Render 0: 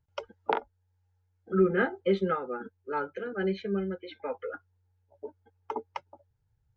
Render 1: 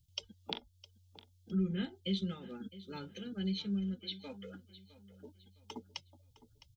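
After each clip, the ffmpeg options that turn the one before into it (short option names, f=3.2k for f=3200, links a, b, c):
-af "firequalizer=gain_entry='entry(190,0);entry(410,-19);entry(1400,-23);entry(3300,8)':delay=0.05:min_phase=1,acompressor=threshold=-48dB:ratio=1.5,aecho=1:1:660|1320|1980:0.141|0.0494|0.0173,volume=5dB"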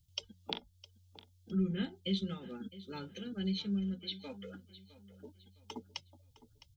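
-af "bandreject=f=60:t=h:w=6,bandreject=f=120:t=h:w=6,bandreject=f=180:t=h:w=6,volume=1dB"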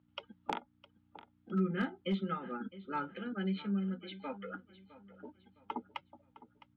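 -af "aeval=exprs='val(0)+0.000562*(sin(2*PI*60*n/s)+sin(2*PI*2*60*n/s)/2+sin(2*PI*3*60*n/s)/3+sin(2*PI*4*60*n/s)/4+sin(2*PI*5*60*n/s)/5)':c=same,highpass=260,equalizer=f=430:t=q:w=4:g=-6,equalizer=f=880:t=q:w=4:g=4,equalizer=f=1.3k:t=q:w=4:g=9,lowpass=f=2.2k:w=0.5412,lowpass=f=2.2k:w=1.3066,aeval=exprs='clip(val(0),-1,0.0237)':c=same,volume=6.5dB"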